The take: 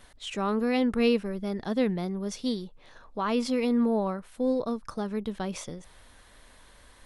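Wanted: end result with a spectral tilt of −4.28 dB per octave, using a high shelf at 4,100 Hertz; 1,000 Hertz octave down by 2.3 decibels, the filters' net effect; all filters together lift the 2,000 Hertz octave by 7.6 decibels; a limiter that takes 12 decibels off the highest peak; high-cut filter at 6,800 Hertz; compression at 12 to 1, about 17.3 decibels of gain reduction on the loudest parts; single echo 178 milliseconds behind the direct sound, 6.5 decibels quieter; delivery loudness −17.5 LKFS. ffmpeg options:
ffmpeg -i in.wav -af "lowpass=6800,equalizer=frequency=1000:width_type=o:gain=-6,equalizer=frequency=2000:width_type=o:gain=9,highshelf=frequency=4100:gain=7.5,acompressor=threshold=-36dB:ratio=12,alimiter=level_in=14dB:limit=-24dB:level=0:latency=1,volume=-14dB,aecho=1:1:178:0.473,volume=28.5dB" out.wav

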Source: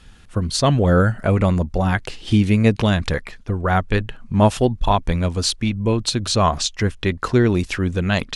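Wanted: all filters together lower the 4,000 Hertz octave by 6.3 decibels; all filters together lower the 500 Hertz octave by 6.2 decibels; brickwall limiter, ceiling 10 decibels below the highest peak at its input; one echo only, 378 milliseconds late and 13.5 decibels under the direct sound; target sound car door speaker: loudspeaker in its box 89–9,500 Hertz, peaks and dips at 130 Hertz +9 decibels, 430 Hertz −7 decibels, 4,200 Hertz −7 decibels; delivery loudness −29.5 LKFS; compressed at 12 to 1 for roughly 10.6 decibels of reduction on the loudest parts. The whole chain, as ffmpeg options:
ffmpeg -i in.wav -af "equalizer=frequency=500:width_type=o:gain=-5,equalizer=frequency=4000:width_type=o:gain=-3.5,acompressor=threshold=-22dB:ratio=12,alimiter=limit=-22.5dB:level=0:latency=1,highpass=89,equalizer=frequency=130:width_type=q:width=4:gain=9,equalizer=frequency=430:width_type=q:width=4:gain=-7,equalizer=frequency=4200:width_type=q:width=4:gain=-7,lowpass=frequency=9500:width=0.5412,lowpass=frequency=9500:width=1.3066,aecho=1:1:378:0.211,volume=2dB" out.wav

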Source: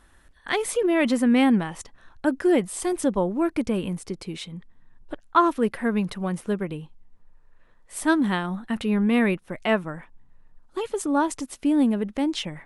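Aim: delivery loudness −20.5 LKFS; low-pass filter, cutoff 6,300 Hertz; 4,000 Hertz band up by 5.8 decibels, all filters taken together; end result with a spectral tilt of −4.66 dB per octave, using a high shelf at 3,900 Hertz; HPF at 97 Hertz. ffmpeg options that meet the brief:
ffmpeg -i in.wav -af "highpass=97,lowpass=6300,highshelf=frequency=3900:gain=7.5,equalizer=frequency=4000:width_type=o:gain=4,volume=3.5dB" out.wav

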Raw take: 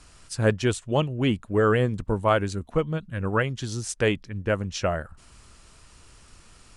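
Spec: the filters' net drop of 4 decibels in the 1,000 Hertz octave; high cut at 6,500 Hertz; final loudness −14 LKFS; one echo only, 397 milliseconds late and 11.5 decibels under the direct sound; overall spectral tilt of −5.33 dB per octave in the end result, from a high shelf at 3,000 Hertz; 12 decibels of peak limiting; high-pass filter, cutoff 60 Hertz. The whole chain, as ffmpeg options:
ffmpeg -i in.wav -af "highpass=60,lowpass=6500,equalizer=frequency=1000:width_type=o:gain=-6,highshelf=frequency=3000:gain=3.5,alimiter=limit=-21.5dB:level=0:latency=1,aecho=1:1:397:0.266,volume=17.5dB" out.wav

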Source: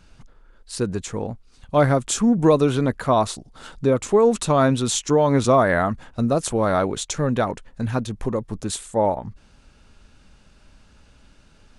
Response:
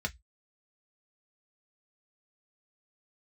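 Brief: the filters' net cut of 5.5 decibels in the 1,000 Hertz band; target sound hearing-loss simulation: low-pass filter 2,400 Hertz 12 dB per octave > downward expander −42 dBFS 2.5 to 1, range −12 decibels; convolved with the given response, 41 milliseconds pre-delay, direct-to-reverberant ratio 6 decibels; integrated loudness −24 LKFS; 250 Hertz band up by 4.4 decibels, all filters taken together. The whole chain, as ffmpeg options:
-filter_complex "[0:a]equalizer=frequency=250:width_type=o:gain=5.5,equalizer=frequency=1000:width_type=o:gain=-8,asplit=2[link_01][link_02];[1:a]atrim=start_sample=2205,adelay=41[link_03];[link_02][link_03]afir=irnorm=-1:irlink=0,volume=-10dB[link_04];[link_01][link_04]amix=inputs=2:normalize=0,lowpass=2400,agate=range=-12dB:threshold=-42dB:ratio=2.5,volume=-5dB"

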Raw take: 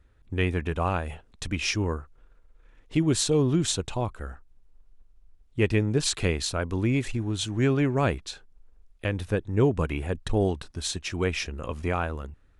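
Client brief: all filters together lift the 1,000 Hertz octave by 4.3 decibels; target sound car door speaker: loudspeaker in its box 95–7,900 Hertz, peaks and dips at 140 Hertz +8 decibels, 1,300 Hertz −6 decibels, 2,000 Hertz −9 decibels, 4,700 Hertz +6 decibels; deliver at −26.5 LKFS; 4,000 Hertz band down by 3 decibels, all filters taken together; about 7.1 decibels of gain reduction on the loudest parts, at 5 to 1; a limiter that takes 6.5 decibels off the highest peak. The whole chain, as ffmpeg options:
ffmpeg -i in.wav -af "equalizer=frequency=1000:width_type=o:gain=8,equalizer=frequency=4000:width_type=o:gain=-6.5,acompressor=threshold=-25dB:ratio=5,alimiter=limit=-21.5dB:level=0:latency=1,highpass=95,equalizer=frequency=140:width_type=q:width=4:gain=8,equalizer=frequency=1300:width_type=q:width=4:gain=-6,equalizer=frequency=2000:width_type=q:width=4:gain=-9,equalizer=frequency=4700:width_type=q:width=4:gain=6,lowpass=frequency=7900:width=0.5412,lowpass=frequency=7900:width=1.3066,volume=6dB" out.wav

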